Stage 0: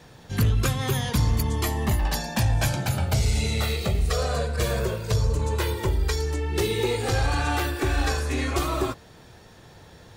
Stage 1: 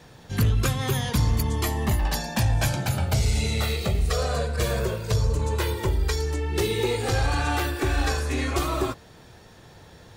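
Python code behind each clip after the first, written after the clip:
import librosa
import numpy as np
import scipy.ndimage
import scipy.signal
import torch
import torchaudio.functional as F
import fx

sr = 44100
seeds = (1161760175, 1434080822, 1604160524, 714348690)

y = x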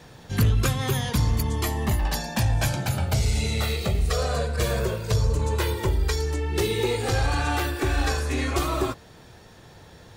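y = fx.rider(x, sr, range_db=4, speed_s=2.0)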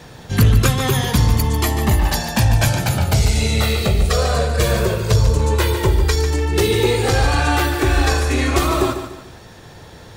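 y = fx.echo_feedback(x, sr, ms=146, feedback_pct=35, wet_db=-9.5)
y = y * 10.0 ** (7.5 / 20.0)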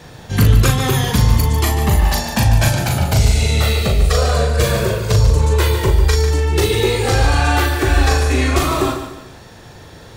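y = fx.doubler(x, sr, ms=39.0, db=-5.0)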